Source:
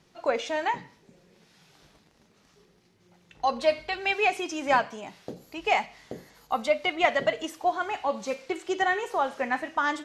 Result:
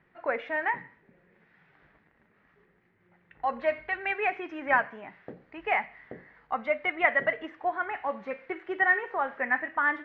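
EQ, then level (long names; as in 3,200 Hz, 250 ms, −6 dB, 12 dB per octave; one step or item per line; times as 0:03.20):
transistor ladder low-pass 2,100 Hz, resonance 60%
+5.5 dB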